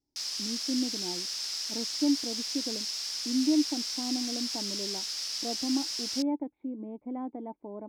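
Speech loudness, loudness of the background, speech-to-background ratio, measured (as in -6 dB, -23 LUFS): -34.0 LUFS, -32.0 LUFS, -2.0 dB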